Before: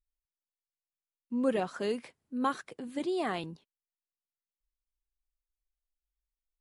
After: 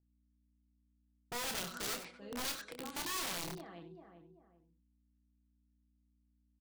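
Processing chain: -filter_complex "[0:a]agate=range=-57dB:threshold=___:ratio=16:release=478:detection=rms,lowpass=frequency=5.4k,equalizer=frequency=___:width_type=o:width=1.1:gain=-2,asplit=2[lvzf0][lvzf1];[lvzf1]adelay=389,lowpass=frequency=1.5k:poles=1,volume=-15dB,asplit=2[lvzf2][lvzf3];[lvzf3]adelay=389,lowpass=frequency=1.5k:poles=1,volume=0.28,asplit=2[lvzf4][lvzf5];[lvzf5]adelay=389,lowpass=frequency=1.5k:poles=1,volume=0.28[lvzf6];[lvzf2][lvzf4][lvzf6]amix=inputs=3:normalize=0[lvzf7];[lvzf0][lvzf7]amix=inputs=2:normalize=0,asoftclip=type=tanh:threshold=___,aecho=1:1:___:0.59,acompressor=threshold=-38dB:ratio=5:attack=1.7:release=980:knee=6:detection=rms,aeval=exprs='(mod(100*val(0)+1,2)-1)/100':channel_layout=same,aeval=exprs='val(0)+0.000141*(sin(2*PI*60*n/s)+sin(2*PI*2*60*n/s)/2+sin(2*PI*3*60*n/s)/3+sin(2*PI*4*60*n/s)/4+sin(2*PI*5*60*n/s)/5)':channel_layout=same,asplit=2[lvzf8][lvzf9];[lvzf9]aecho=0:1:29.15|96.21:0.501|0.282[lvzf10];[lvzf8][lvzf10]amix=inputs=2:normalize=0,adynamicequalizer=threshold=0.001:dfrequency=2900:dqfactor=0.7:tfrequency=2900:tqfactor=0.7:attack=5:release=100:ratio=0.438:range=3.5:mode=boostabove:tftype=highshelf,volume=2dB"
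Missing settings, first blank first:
-53dB, 85, -27dB, 6.1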